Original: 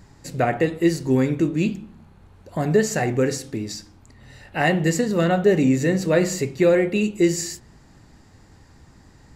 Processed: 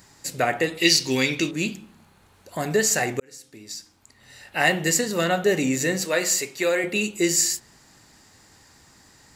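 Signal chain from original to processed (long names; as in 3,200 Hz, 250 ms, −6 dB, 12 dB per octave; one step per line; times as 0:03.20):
0:00.77–0:01.51: flat-topped bell 3,600 Hz +13 dB
0:06.05–0:06.84: high-pass filter 500 Hz 6 dB per octave
spectral tilt +3 dB per octave
0:03.20–0:04.66: fade in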